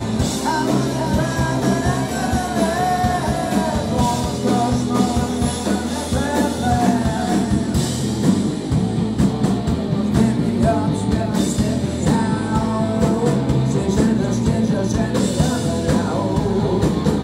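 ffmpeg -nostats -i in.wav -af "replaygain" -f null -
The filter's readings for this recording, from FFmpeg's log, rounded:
track_gain = +1.3 dB
track_peak = 0.448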